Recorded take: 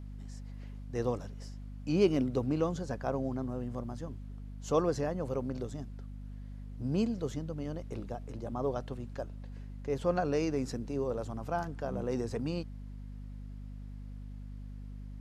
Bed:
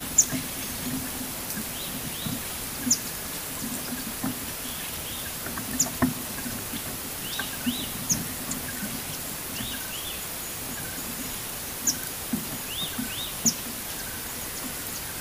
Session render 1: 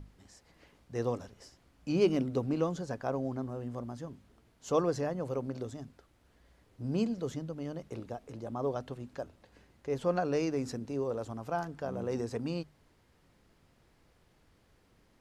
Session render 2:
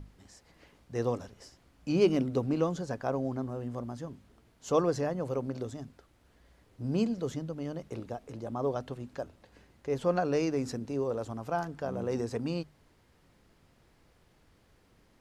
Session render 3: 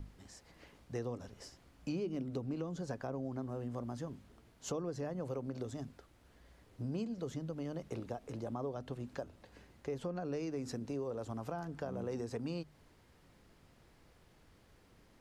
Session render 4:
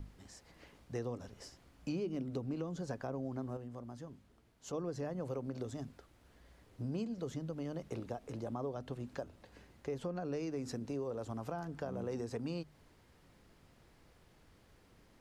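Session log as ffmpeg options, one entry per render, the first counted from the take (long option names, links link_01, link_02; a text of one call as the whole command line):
ffmpeg -i in.wav -af "bandreject=frequency=50:width_type=h:width=6,bandreject=frequency=100:width_type=h:width=6,bandreject=frequency=150:width_type=h:width=6,bandreject=frequency=200:width_type=h:width=6,bandreject=frequency=250:width_type=h:width=6" out.wav
ffmpeg -i in.wav -af "volume=2dB" out.wav
ffmpeg -i in.wav -filter_complex "[0:a]acrossover=split=390[link_01][link_02];[link_02]alimiter=level_in=4dB:limit=-24dB:level=0:latency=1:release=309,volume=-4dB[link_03];[link_01][link_03]amix=inputs=2:normalize=0,acompressor=threshold=-37dB:ratio=4" out.wav
ffmpeg -i in.wav -filter_complex "[0:a]asplit=3[link_01][link_02][link_03];[link_01]atrim=end=3.572[link_04];[link_02]atrim=start=3.568:end=4.732,asetpts=PTS-STARTPTS,volume=-6dB[link_05];[link_03]atrim=start=4.728[link_06];[link_04][link_05]acrossfade=duration=0.004:curve1=hsin:curve2=hsin[link_07];[link_07][link_06]acrossfade=duration=0.004:curve1=hsin:curve2=hsin" out.wav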